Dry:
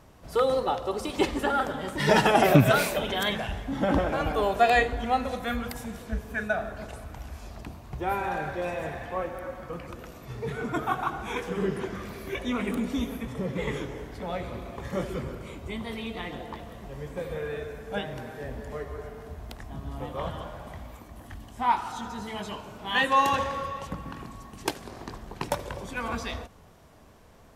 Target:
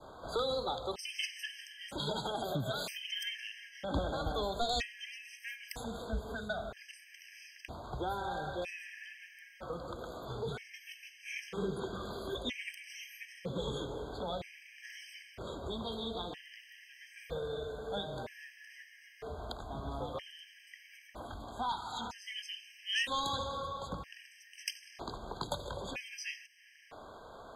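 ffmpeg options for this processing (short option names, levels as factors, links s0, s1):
-filter_complex "[0:a]asettb=1/sr,asplit=3[s0][s1][s2];[s0]atrim=end=1.884[s3];[s1]atrim=start=1.88:end=3.94,asetpts=PTS-STARTPTS,afade=t=in:d=0.004:c=qsin,afade=t=out:st=2.056:d=0.004:c=qsin,acompressor=threshold=0.0251:ratio=2[s4];[s2]atrim=start=3.936[s5];[s3][s4]acrossfade=d=0.004:c1=hsin:c2=qsin[s6];[s6][s5]acrossfade=d=0.004:c1=qsin:c2=hsin,acrossover=split=380 5100:gain=0.2 1 0.178[s7][s8][s9];[s7][s8][s9]amix=inputs=3:normalize=0,asoftclip=type=tanh:threshold=0.15,acrossover=split=190|3000[s10][s11][s12];[s11]acompressor=threshold=0.00398:ratio=3[s13];[s10][s13][s12]amix=inputs=3:normalize=0,adynamicequalizer=threshold=0.00126:dfrequency=1700:dqfactor=0.82:tfrequency=1700:tqfactor=0.82:attack=5:release=100:ratio=0.375:range=2.5:mode=cutabove:tftype=bell,afftfilt=real='re*gt(sin(2*PI*0.52*pts/sr)*(1-2*mod(floor(b*sr/1024/1600),2)),0)':imag='im*gt(sin(2*PI*0.52*pts/sr)*(1-2*mod(floor(b*sr/1024/1600),2)),0)':win_size=1024:overlap=0.75,volume=2.66"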